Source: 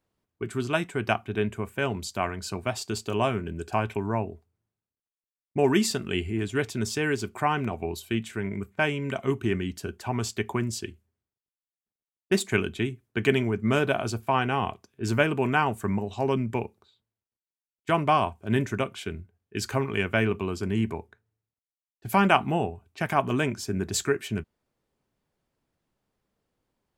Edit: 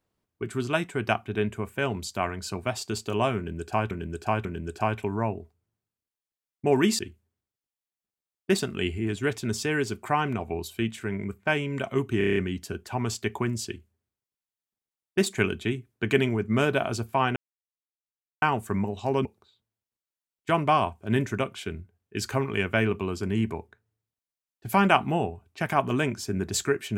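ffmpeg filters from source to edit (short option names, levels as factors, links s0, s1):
-filter_complex "[0:a]asplit=14[s0][s1][s2][s3][s4][s5][s6][s7][s8][s9][s10][s11][s12][s13];[s0]atrim=end=3.912[s14];[s1]atrim=start=3.368:end=3.912[s15];[s2]atrim=start=3.368:end=5.912[s16];[s3]atrim=start=10.808:end=12.412[s17];[s4]atrim=start=5.908:end=9.532[s18];[s5]atrim=start=9.498:end=9.532[s19];[s6]atrim=start=9.498:end=9.532[s20];[s7]atrim=start=9.498:end=9.532[s21];[s8]atrim=start=9.498:end=9.532[s22];[s9]atrim=start=9.498:end=9.532[s23];[s10]atrim=start=9.498:end=14.5,asetpts=PTS-STARTPTS,afade=t=out:st=4.998:d=0.004:c=hsin[s24];[s11]atrim=start=14.5:end=15.56,asetpts=PTS-STARTPTS,volume=0[s25];[s12]atrim=start=15.56:end=16.392,asetpts=PTS-STARTPTS,afade=t=in:d=0.004:c=hsin[s26];[s13]atrim=start=16.648[s27];[s14][s15]acrossfade=d=0.004:c1=hsin:c2=hsin[s28];[s28][s16]acrossfade=d=0.004:c1=hsin:c2=hsin[s29];[s29][s17]acrossfade=d=0.004:c1=hsin:c2=hsin[s30];[s30][s18]acrossfade=d=0.004:c1=hsin:c2=hsin[s31];[s31][s19]acrossfade=d=0.004:c1=hsin:c2=hsin[s32];[s32][s20]acrossfade=d=0.004:c1=hsin:c2=hsin[s33];[s33][s21]acrossfade=d=0.004:c1=hsin:c2=hsin[s34];[s34][s22]acrossfade=d=0.004:c1=hsin:c2=hsin[s35];[s35][s23]acrossfade=d=0.004:c1=hsin:c2=hsin[s36];[s24][s25][s26]concat=n=3:v=0:a=1[s37];[s36][s37]acrossfade=d=0.004:c1=hsin:c2=hsin[s38];[s38][s27]acrossfade=d=0.004:c1=hsin:c2=hsin"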